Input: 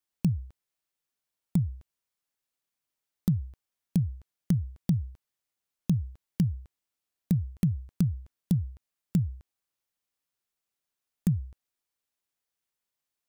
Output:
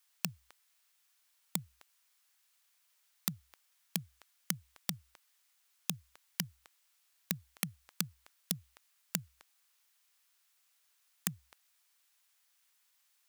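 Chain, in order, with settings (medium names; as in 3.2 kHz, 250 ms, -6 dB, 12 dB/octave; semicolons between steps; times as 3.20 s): high-pass 1.1 kHz 12 dB/octave; in parallel at -3.5 dB: wavefolder -32.5 dBFS; on the sum: trim +9.5 dB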